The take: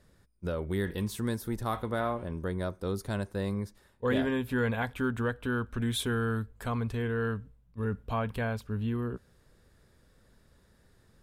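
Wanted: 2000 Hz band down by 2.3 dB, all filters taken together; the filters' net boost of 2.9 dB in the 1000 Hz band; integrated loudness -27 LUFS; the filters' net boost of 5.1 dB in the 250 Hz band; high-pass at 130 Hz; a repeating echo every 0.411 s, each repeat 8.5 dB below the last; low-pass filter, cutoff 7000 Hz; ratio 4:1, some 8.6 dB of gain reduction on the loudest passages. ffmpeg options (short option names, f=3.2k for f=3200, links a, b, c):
-af "highpass=130,lowpass=7k,equalizer=f=250:t=o:g=6,equalizer=f=1k:t=o:g=5.5,equalizer=f=2k:t=o:g=-6.5,acompressor=threshold=-31dB:ratio=4,aecho=1:1:411|822|1233|1644:0.376|0.143|0.0543|0.0206,volume=8.5dB"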